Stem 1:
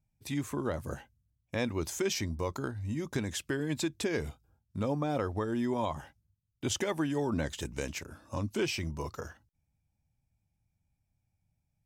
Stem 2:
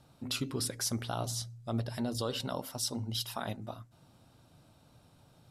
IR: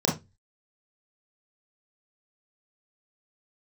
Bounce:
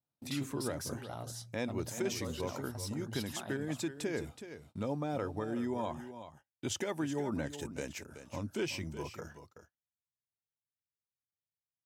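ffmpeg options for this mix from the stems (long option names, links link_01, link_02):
-filter_complex "[0:a]bandreject=frequency=1100:width=11,volume=-4dB,asplit=2[link_01][link_02];[link_02]volume=-11.5dB[link_03];[1:a]asoftclip=type=tanh:threshold=-25.5dB,volume=-6.5dB[link_04];[link_03]aecho=0:1:374:1[link_05];[link_01][link_04][link_05]amix=inputs=3:normalize=0,highpass=96,adynamicequalizer=threshold=0.00178:dfrequency=3600:dqfactor=0.92:tfrequency=3600:tqfactor=0.92:attack=5:release=100:ratio=0.375:range=2:mode=cutabove:tftype=bell,agate=range=-25dB:threshold=-58dB:ratio=16:detection=peak"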